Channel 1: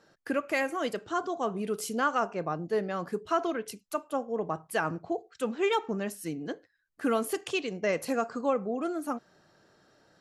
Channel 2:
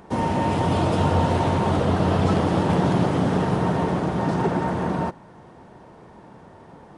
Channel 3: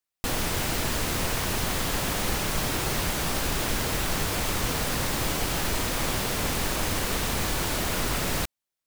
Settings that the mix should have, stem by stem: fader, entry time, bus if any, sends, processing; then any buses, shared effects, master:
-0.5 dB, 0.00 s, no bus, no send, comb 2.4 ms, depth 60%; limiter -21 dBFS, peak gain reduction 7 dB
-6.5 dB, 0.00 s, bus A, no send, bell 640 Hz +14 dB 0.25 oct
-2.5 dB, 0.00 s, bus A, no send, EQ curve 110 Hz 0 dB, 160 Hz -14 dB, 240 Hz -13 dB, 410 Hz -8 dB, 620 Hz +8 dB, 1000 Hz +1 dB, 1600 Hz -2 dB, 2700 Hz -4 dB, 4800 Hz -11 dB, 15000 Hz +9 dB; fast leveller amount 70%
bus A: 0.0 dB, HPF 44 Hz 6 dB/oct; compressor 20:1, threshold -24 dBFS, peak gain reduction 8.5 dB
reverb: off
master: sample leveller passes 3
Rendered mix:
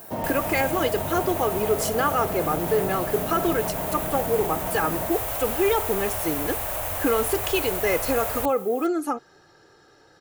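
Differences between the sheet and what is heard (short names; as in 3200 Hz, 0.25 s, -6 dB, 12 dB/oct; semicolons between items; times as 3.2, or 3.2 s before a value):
stem 1 -0.5 dB -> +6.5 dB; master: missing sample leveller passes 3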